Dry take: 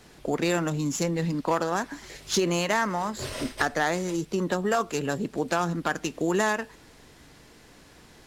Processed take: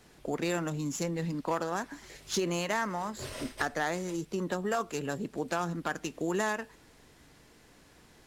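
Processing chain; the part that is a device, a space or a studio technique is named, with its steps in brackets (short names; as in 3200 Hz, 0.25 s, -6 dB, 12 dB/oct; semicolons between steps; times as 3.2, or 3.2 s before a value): exciter from parts (in parallel at -14 dB: HPF 3300 Hz + soft clip -24.5 dBFS, distortion -15 dB + HPF 4100 Hz); on the sum: gain -6 dB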